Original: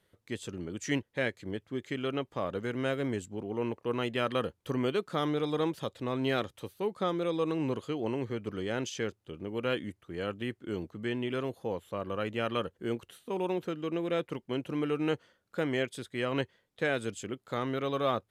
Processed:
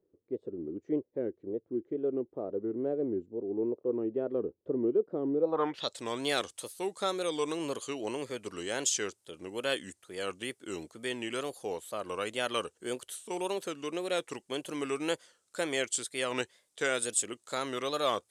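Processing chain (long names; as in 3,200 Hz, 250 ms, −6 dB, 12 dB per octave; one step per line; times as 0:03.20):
low-pass filter sweep 380 Hz → 8,900 Hz, 0:05.39–0:05.99
tape wow and flutter 140 cents
bass and treble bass −13 dB, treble +12 dB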